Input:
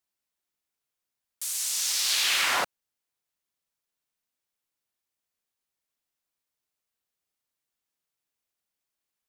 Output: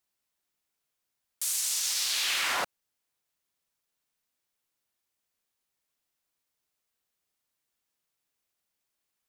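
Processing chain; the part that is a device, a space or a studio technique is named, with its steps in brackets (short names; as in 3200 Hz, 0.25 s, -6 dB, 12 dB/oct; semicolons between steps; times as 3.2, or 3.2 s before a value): clipper into limiter (hard clip -15.5 dBFS, distortion -36 dB; limiter -23 dBFS, peak gain reduction 7.5 dB); gain +3 dB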